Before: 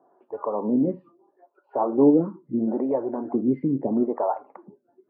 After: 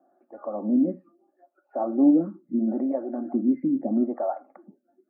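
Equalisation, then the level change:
high-pass filter 140 Hz
low-shelf EQ 320 Hz +6.5 dB
phaser with its sweep stopped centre 650 Hz, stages 8
−2.5 dB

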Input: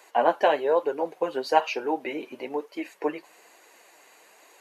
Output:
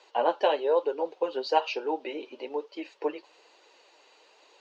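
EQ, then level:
loudspeaker in its box 460–4,900 Hz, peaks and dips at 700 Hz −9 dB, 1,100 Hz −5 dB, 2,200 Hz −6 dB
parametric band 1,700 Hz −10 dB 0.75 octaves
+3.0 dB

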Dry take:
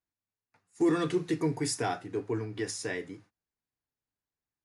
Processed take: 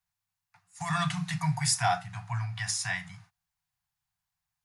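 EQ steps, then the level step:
Chebyshev band-stop filter 180–700 Hz, order 5
+7.0 dB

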